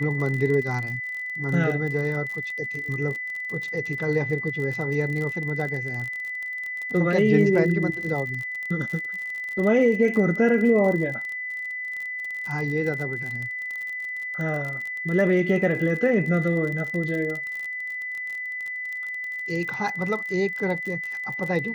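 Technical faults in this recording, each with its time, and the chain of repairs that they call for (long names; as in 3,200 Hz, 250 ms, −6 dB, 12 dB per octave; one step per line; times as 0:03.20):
surface crackle 38 per second −30 dBFS
whistle 2,000 Hz −29 dBFS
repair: click removal
notch filter 2,000 Hz, Q 30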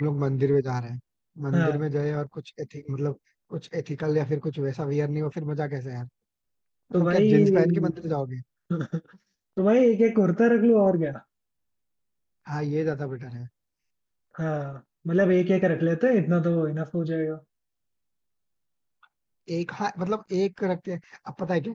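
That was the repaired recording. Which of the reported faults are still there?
none of them is left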